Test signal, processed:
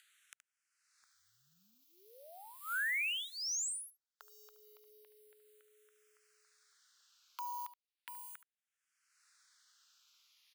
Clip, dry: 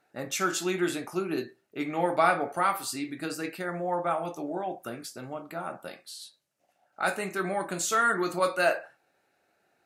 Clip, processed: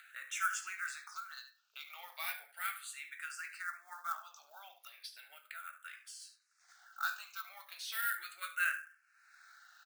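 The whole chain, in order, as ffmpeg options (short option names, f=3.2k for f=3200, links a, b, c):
-filter_complex "[0:a]highpass=f=1.4k:t=q:w=3.7,highshelf=f=2.8k:g=6,aecho=1:1:73:0.188,acompressor=mode=upward:threshold=-26dB:ratio=2.5,lowpass=4k,acrusher=bits=7:mode=log:mix=0:aa=0.000001,aderivative,asplit=2[a][b];[b]afreqshift=-0.36[c];[a][c]amix=inputs=2:normalize=1,volume=-1dB"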